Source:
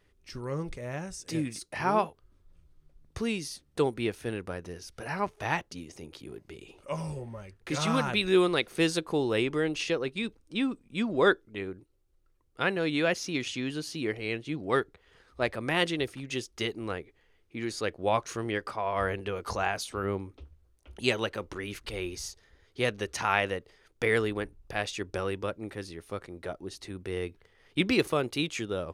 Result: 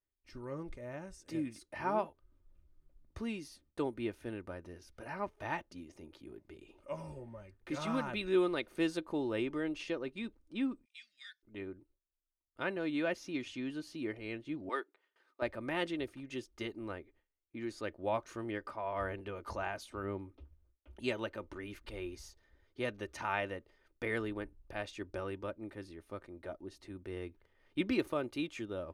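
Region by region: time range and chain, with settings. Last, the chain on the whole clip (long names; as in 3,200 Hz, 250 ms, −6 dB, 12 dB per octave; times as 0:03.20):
0:10.85–0:11.43: elliptic high-pass filter 1,900 Hz, stop band 50 dB + parametric band 5,300 Hz +12.5 dB 0.72 octaves + downward compressor 4 to 1, threshold −36 dBFS
0:14.69–0:15.42: high-pass filter 350 Hz 24 dB per octave + parametric band 550 Hz −6 dB 0.93 octaves
whole clip: parametric band 7,400 Hz −9 dB 2.6 octaves; noise gate with hold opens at −55 dBFS; comb filter 3.3 ms, depth 44%; level −7.5 dB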